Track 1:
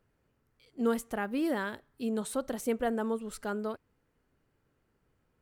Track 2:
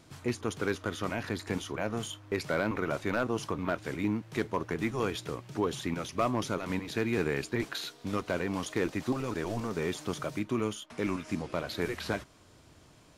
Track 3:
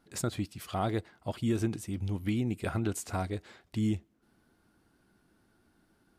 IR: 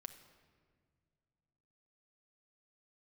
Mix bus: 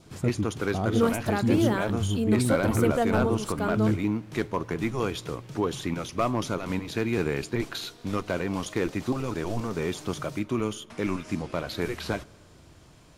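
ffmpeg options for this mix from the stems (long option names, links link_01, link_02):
-filter_complex "[0:a]adelay=150,volume=2.5dB,asplit=2[link_01][link_02];[link_02]volume=-3dB[link_03];[1:a]lowshelf=frequency=71:gain=7.5,volume=0.5dB,asplit=2[link_04][link_05];[link_05]volume=-5.5dB[link_06];[2:a]tiltshelf=frequency=970:gain=9,volume=-3dB[link_07];[3:a]atrim=start_sample=2205[link_08];[link_03][link_06]amix=inputs=2:normalize=0[link_09];[link_09][link_08]afir=irnorm=-1:irlink=0[link_10];[link_01][link_04][link_07][link_10]amix=inputs=4:normalize=0,adynamicequalizer=threshold=0.00355:dfrequency=1800:dqfactor=3.6:tfrequency=1800:tqfactor=3.6:attack=5:release=100:ratio=0.375:range=2.5:mode=cutabove:tftype=bell"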